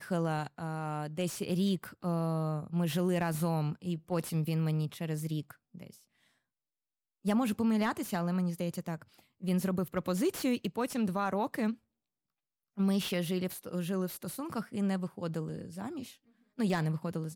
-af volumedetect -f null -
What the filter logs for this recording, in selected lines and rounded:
mean_volume: -33.6 dB
max_volume: -19.0 dB